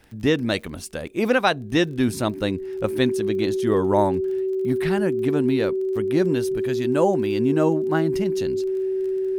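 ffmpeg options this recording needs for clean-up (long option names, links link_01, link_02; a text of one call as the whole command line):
ffmpeg -i in.wav -af "adeclick=threshold=4,bandreject=frequency=380:width=30" out.wav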